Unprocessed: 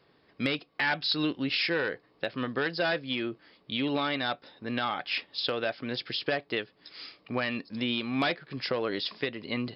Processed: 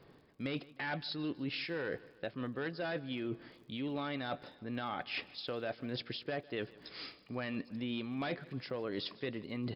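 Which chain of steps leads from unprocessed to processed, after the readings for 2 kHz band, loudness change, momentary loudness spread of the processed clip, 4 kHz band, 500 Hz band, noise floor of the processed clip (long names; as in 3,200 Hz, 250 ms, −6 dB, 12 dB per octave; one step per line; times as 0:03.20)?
−11.0 dB, −9.0 dB, 6 LU, −11.5 dB, −7.5 dB, −62 dBFS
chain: spectral tilt −2 dB per octave
reversed playback
downward compressor 5 to 1, threshold −39 dBFS, peak gain reduction 15.5 dB
reversed playback
surface crackle 49 per second −61 dBFS
repeating echo 153 ms, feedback 49%, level −21 dB
level +2 dB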